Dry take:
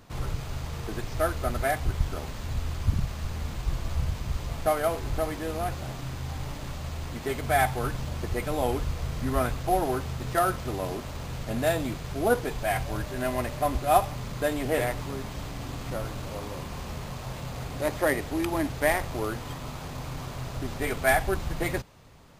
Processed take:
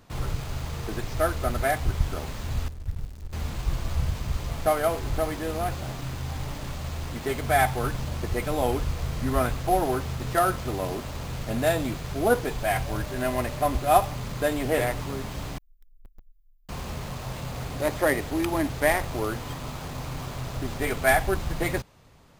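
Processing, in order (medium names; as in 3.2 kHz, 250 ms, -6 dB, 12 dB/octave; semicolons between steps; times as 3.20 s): 2.68–3.33 s: amplifier tone stack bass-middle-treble 10-0-1; 15.58–16.69 s: inverse Chebyshev band-stop 120–7500 Hz, stop band 80 dB; in parallel at -5 dB: bit crusher 7-bit; on the sum: trim -2 dB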